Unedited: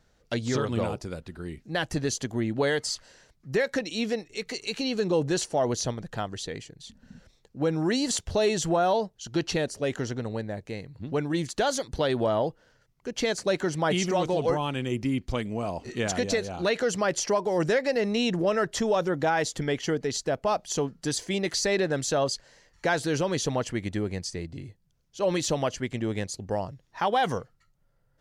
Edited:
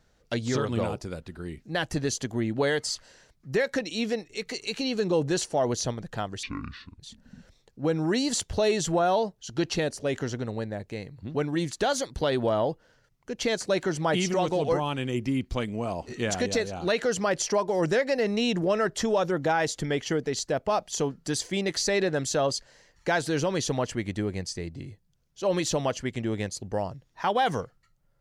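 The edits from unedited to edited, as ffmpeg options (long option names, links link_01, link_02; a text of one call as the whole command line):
ffmpeg -i in.wav -filter_complex "[0:a]asplit=3[link_01][link_02][link_03];[link_01]atrim=end=6.434[link_04];[link_02]atrim=start=6.43:end=6.77,asetpts=PTS-STARTPTS,asetrate=26460,aresample=44100[link_05];[link_03]atrim=start=6.766[link_06];[link_04][link_05]acrossfade=duration=0.004:curve1=hsin:curve2=hsin[link_07];[link_07][link_06]acrossfade=duration=0.004:curve1=hsin:curve2=hsin" out.wav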